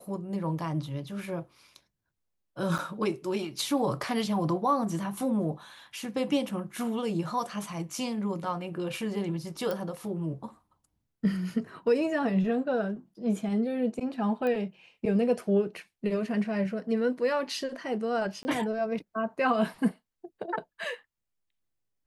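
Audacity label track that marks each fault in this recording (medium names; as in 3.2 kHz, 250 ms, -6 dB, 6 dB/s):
2.780000	2.790000	dropout 7.4 ms
9.710000	9.710000	pop
14.470000	14.470000	pop -21 dBFS
18.430000	18.450000	dropout 20 ms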